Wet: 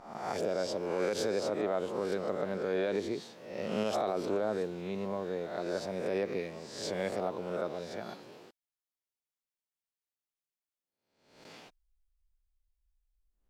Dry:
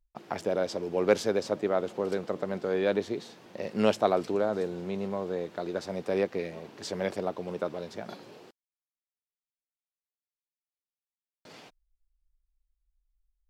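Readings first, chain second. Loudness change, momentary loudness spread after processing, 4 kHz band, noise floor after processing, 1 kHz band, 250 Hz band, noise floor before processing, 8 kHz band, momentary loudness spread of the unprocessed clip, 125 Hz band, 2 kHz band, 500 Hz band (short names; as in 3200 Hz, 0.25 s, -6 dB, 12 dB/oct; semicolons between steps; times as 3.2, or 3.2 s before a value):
-4.0 dB, 10 LU, -1.5 dB, under -85 dBFS, -3.5 dB, -4.0 dB, under -85 dBFS, -0.5 dB, 13 LU, -4.0 dB, -3.0 dB, -3.5 dB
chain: spectral swells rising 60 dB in 0.73 s; limiter -18 dBFS, peak gain reduction 10 dB; gain -4 dB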